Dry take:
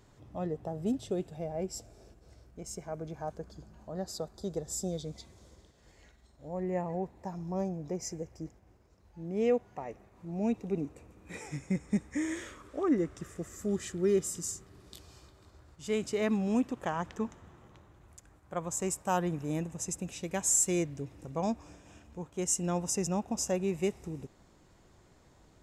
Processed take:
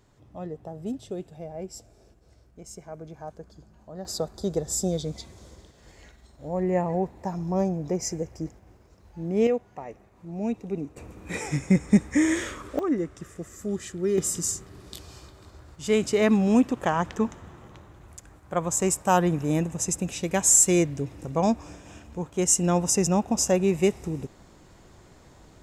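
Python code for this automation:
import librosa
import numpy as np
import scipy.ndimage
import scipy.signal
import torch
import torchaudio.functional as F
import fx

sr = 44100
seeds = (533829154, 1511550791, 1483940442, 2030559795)

y = fx.gain(x, sr, db=fx.steps((0.0, -1.0), (4.05, 8.5), (9.47, 2.0), (10.97, 11.5), (12.79, 2.0), (14.18, 9.0)))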